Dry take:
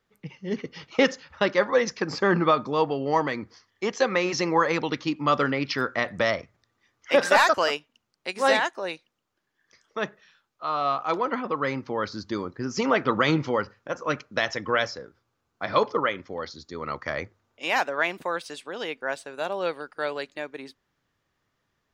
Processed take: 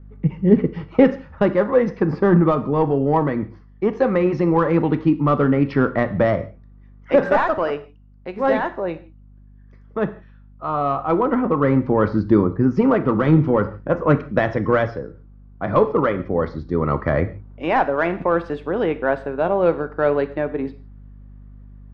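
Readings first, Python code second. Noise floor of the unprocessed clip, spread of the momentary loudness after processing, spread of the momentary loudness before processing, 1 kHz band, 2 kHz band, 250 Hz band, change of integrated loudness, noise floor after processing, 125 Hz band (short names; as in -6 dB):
-77 dBFS, 9 LU, 13 LU, +3.0 dB, -1.5 dB, +11.5 dB, +6.5 dB, -46 dBFS, +14.0 dB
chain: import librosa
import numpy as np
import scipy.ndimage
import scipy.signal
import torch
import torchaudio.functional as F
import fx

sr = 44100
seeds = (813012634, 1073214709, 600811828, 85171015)

p1 = scipy.signal.sosfilt(scipy.signal.butter(2, 1500.0, 'lowpass', fs=sr, output='sos'), x)
p2 = 10.0 ** (-20.0 / 20.0) * np.tanh(p1 / 10.0 ** (-20.0 / 20.0))
p3 = p1 + (p2 * 10.0 ** (-6.0 / 20.0))
p4 = fx.low_shelf(p3, sr, hz=180.0, db=4.0)
p5 = fx.rev_gated(p4, sr, seeds[0], gate_ms=190, shape='falling', drr_db=10.0)
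p6 = fx.add_hum(p5, sr, base_hz=50, snr_db=31)
p7 = fx.rider(p6, sr, range_db=4, speed_s=0.5)
y = fx.low_shelf(p7, sr, hz=450.0, db=10.5)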